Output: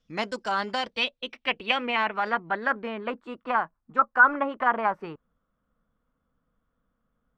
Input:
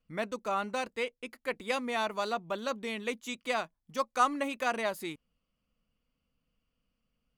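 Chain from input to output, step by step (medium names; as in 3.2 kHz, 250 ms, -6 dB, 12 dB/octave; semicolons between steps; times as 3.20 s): formant shift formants +3 st; dynamic bell 4.3 kHz, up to -4 dB, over -44 dBFS, Q 0.88; low-pass sweep 5.7 kHz -> 1.3 kHz, 0.28–3.28 s; trim +4.5 dB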